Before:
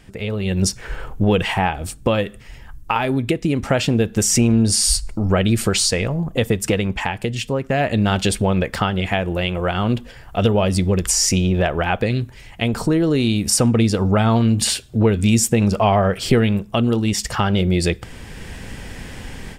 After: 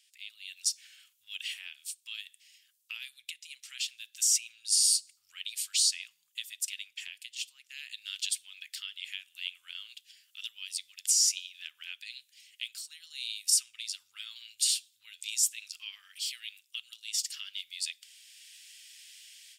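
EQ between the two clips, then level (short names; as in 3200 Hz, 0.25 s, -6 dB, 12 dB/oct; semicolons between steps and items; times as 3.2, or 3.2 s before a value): inverse Chebyshev high-pass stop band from 680 Hz, stop band 70 dB; -6.5 dB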